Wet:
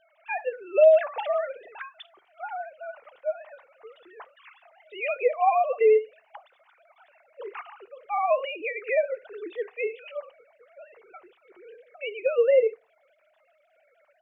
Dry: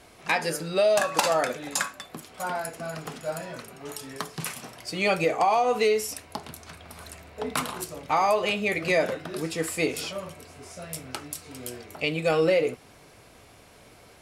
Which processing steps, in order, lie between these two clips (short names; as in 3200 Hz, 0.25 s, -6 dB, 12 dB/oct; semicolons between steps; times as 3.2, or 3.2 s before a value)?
sine-wave speech; on a send at -20 dB: reverb RT60 0.25 s, pre-delay 3 ms; on the sum: Opus 48 kbps 48000 Hz